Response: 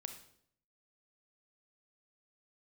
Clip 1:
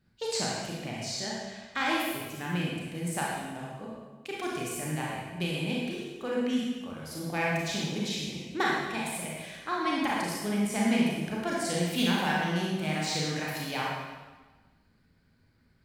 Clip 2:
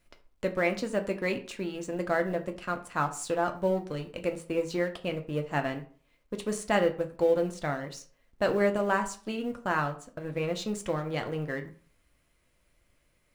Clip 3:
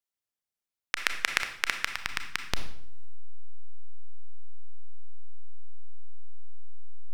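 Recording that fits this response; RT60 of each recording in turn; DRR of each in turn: 3; 1.3 s, 0.45 s, 0.65 s; -4.5 dB, 4.5 dB, 6.5 dB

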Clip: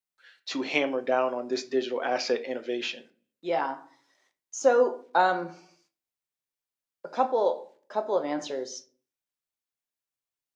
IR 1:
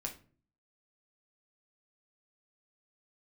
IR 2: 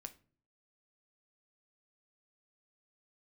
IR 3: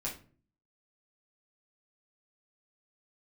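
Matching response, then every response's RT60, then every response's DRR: 2; no single decay rate, no single decay rate, 0.40 s; 1.0 dB, 8.0 dB, -5.5 dB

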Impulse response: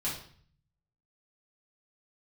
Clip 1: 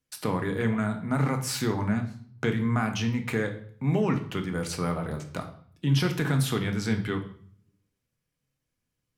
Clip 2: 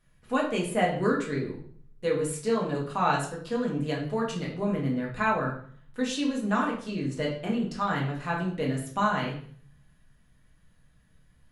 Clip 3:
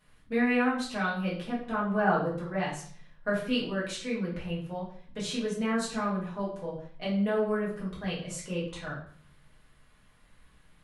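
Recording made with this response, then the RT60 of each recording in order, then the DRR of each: 3; 0.50 s, 0.50 s, 0.50 s; 4.0 dB, -3.0 dB, -7.5 dB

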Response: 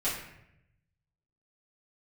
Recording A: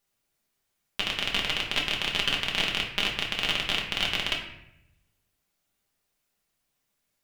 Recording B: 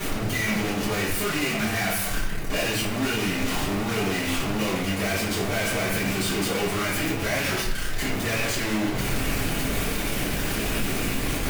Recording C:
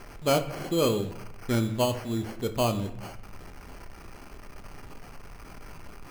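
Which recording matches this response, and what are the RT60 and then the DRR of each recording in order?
B; 0.80 s, 0.80 s, 0.80 s; -2.0 dB, -11.0 dB, 6.5 dB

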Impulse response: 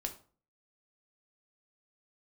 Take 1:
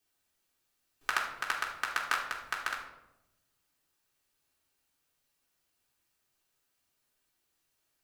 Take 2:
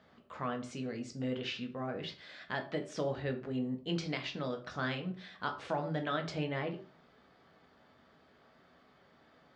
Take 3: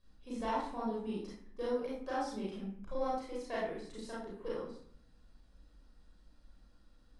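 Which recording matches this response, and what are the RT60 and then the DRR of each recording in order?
2; 0.90 s, 0.40 s, 0.60 s; -4.0 dB, 4.0 dB, -7.5 dB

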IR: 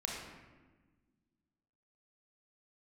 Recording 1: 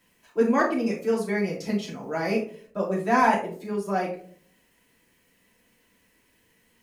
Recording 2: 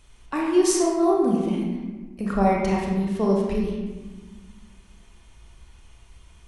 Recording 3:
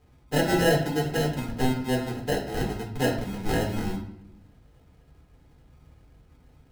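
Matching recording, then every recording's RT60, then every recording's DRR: 2; 0.50 s, 1.3 s, 0.70 s; -5.5 dB, -2.0 dB, -2.0 dB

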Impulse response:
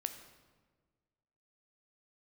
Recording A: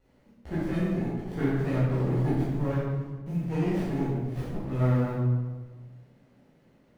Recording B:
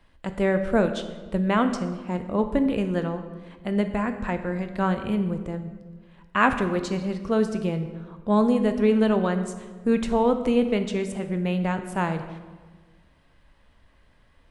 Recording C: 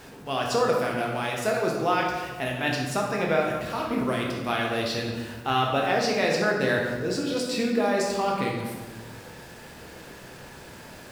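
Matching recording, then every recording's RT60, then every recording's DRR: B; 1.4 s, 1.5 s, 1.5 s; -10.5 dB, 7.5 dB, -2.0 dB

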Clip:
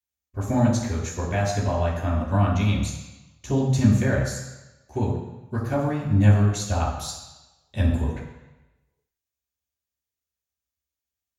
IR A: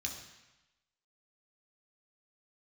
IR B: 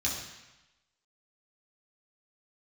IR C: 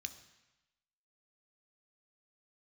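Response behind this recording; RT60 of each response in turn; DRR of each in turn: B; 1.0 s, 1.0 s, 1.0 s; 0.5 dB, -5.5 dB, 8.5 dB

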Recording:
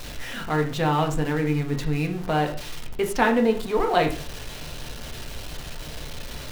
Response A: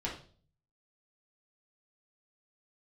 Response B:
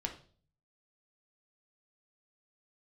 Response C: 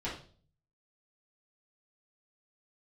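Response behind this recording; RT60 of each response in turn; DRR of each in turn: B; 0.45 s, 0.45 s, 0.45 s; -4.5 dB, 2.5 dB, -8.5 dB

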